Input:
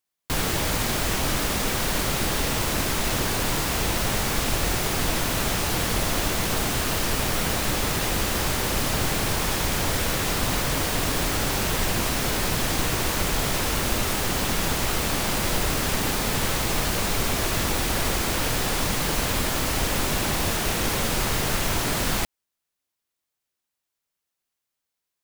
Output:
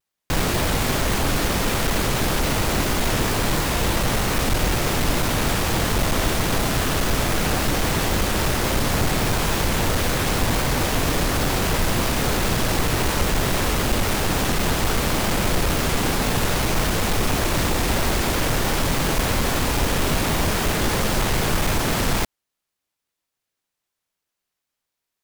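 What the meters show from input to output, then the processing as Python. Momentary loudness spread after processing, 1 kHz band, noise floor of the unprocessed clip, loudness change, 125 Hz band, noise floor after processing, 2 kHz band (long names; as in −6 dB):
0 LU, +3.5 dB, −84 dBFS, +2.5 dB, +5.0 dB, −83 dBFS, +2.5 dB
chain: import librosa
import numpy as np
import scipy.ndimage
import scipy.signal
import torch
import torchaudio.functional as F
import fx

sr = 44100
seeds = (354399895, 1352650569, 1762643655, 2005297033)

y = fx.halfwave_hold(x, sr)
y = fx.vibrato_shape(y, sr, shape='saw_down', rate_hz=3.7, depth_cents=160.0)
y = y * librosa.db_to_amplitude(-1.5)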